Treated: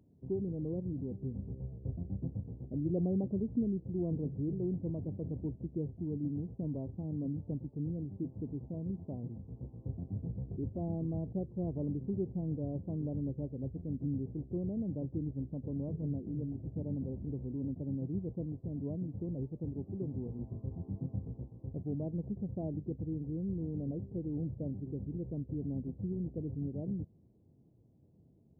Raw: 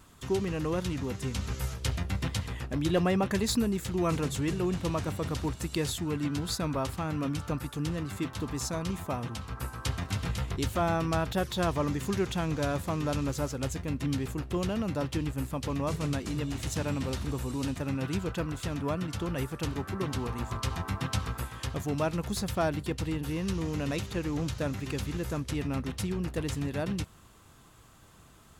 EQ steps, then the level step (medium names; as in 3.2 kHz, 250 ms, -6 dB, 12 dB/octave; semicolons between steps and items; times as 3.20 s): Gaussian low-pass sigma 19 samples; high-pass 110 Hz 12 dB/octave; -2.0 dB